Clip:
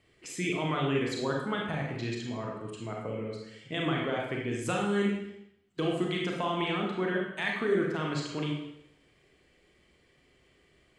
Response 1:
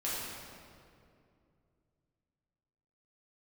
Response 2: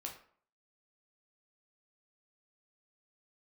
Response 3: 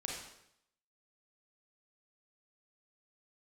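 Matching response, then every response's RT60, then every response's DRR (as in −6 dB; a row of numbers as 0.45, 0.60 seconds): 3; 2.5, 0.55, 0.75 seconds; −9.0, 0.0, −2.0 decibels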